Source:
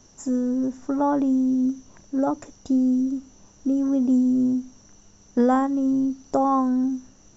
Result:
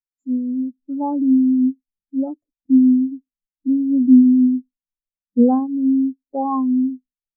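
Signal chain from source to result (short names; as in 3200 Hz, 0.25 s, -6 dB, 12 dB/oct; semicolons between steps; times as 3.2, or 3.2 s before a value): spectral expander 2.5:1; gain +7 dB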